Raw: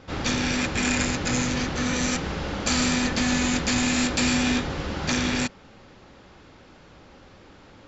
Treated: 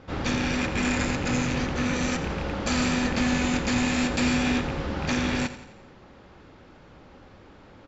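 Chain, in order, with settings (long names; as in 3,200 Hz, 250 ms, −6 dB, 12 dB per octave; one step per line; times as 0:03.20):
loose part that buzzes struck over −26 dBFS, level −20 dBFS
high-shelf EQ 3,200 Hz −9 dB
repeating echo 86 ms, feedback 53%, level −13.5 dB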